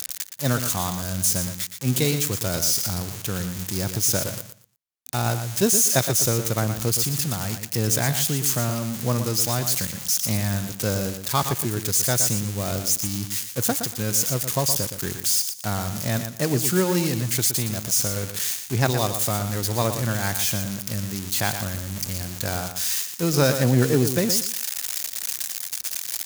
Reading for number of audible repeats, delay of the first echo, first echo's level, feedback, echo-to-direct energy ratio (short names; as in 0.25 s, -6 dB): 2, 0.118 s, -9.0 dB, 22%, -9.0 dB